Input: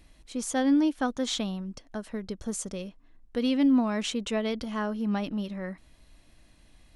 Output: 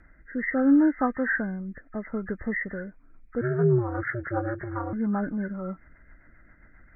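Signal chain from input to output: knee-point frequency compression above 1.2 kHz 4:1; rotary cabinet horn 0.75 Hz, later 7.5 Hz, at 2.33 s; 3.41–4.93 s: ring modulator 120 Hz; trim +4 dB

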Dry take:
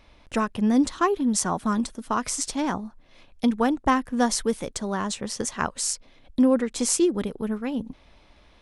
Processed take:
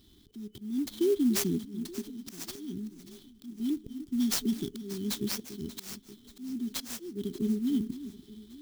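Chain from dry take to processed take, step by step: Bessel low-pass 6.7 kHz, order 8; FFT band-reject 420–3000 Hz; high-pass 140 Hz 6 dB/octave; compression 3:1, threshold -26 dBFS, peak gain reduction 7.5 dB; slow attack 427 ms; echo whose repeats swap between lows and highs 292 ms, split 2 kHz, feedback 71%, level -13.5 dB; on a send at -21 dB: reverberation RT60 0.25 s, pre-delay 3 ms; on the sum: sampling jitter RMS 0.028 ms; trim +2.5 dB

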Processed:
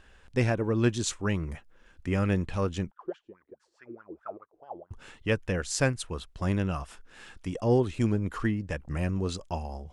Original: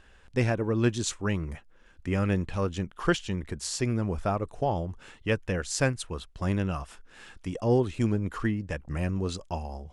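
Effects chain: 2.91–4.91 s: wah-wah 4.7 Hz 310–1600 Hz, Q 11

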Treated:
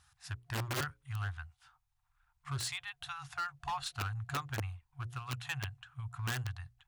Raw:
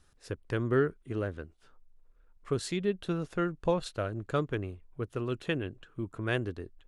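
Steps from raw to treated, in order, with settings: FFT band-reject 140–710 Hz; hard clipper -33.5 dBFS, distortion -10 dB; hum notches 60/120/180/240/300/360/420/480/540 Hz; integer overflow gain 32 dB; high-pass 71 Hz 12 dB/octave; trim +2 dB

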